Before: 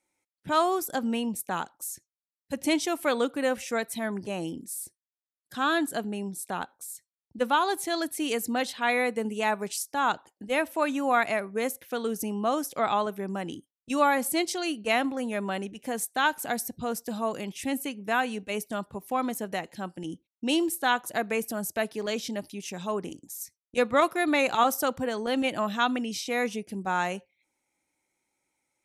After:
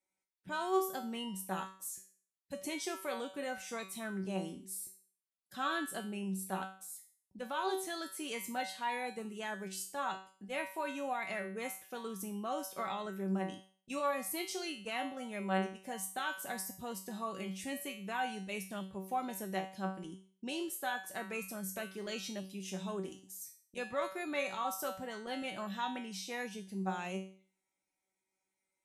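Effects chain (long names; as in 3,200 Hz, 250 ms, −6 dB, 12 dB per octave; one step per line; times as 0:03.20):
in parallel at +2 dB: speech leveller within 5 dB 2 s
on the sum: brickwall limiter −11 dBFS, peak gain reduction 7.5 dB
tuned comb filter 190 Hz, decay 0.44 s, harmonics all, mix 90%
level −3.5 dB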